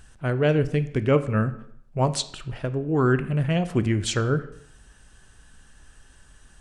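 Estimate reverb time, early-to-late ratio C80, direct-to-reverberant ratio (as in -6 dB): 0.70 s, 17.0 dB, 11.0 dB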